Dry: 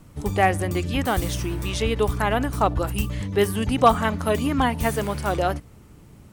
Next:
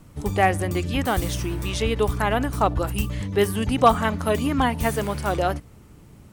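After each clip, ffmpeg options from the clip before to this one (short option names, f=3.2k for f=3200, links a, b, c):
-af anull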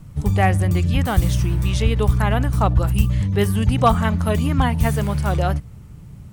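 -af "lowshelf=f=210:t=q:w=1.5:g=8.5"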